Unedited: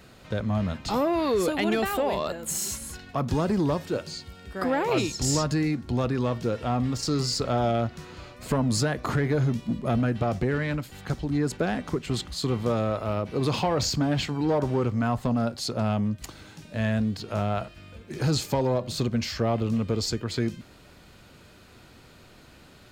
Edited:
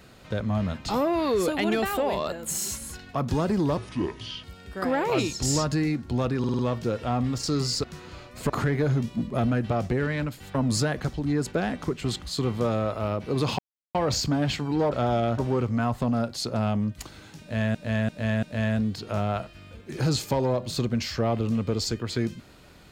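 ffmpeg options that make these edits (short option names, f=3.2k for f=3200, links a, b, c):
-filter_complex "[0:a]asplit=17[a][b][c][d][e][f][g][h][i][j][k][l][m][n][o][p][q];[a]atrim=end=3.774[r];[b]atrim=start=3.77:end=4.23,asetpts=PTS-STARTPTS,asetrate=30429,aresample=44100,atrim=end_sample=29400,asetpts=PTS-STARTPTS[s];[c]atrim=start=4.226:end=6.232[t];[d]atrim=start=6.178:end=6.232[u];[e]atrim=start=6.178:end=6.232[v];[f]atrim=start=6.178:end=6.232[w];[g]atrim=start=6.178:end=7.432[x];[h]atrim=start=7.888:end=8.552[y];[i]atrim=start=9.008:end=11.062[z];[j]atrim=start=8.548:end=9.012[aa];[k]atrim=start=11.058:end=13.64,asetpts=PTS-STARTPTS,afade=t=out:st=2.578:d=0.004:c=hsin,apad=pad_dur=0.36[ab];[l]atrim=start=13.64:end=14.612,asetpts=PTS-STARTPTS,afade=t=in:d=0.004:c=hsin[ac];[m]atrim=start=7.428:end=7.892[ad];[n]atrim=start=14.608:end=16.982[ae];[o]atrim=start=16.638:end=16.982[af];[p]atrim=start=16.638:end=16.982[ag];[q]atrim=start=16.638[ah];[r][s]acrossfade=d=0.004:c1=hsin:c2=hsin[ai];[ai][t]acrossfade=d=0.004:c1=hsin:c2=hsin[aj];[aj][u]acrossfade=d=0.004:c1=hsin:c2=hsin[ak];[ak][v]acrossfade=d=0.004:c1=hsin:c2=hsin[al];[al][w]acrossfade=d=0.004:c1=hsin:c2=hsin[am];[am][x]acrossfade=d=0.004:c1=hsin:c2=hsin[an];[an][y]acrossfade=d=0.004:c1=hsin:c2=hsin[ao];[ao][z]acrossfade=d=0.004:c1=hsin:c2=hsin[ap];[ap][aa]acrossfade=d=0.004:c1=hsin:c2=hsin[aq];[ab][ac]concat=n=2:v=0:a=1[ar];[aq][ar]acrossfade=d=0.004:c1=hsin:c2=hsin[as];[as][ad]acrossfade=d=0.004:c1=hsin:c2=hsin[at];[at][ae]acrossfade=d=0.004:c1=hsin:c2=hsin[au];[au][af]acrossfade=d=0.004:c1=hsin:c2=hsin[av];[av][ag]acrossfade=d=0.004:c1=hsin:c2=hsin[aw];[aw][ah]acrossfade=d=0.004:c1=hsin:c2=hsin"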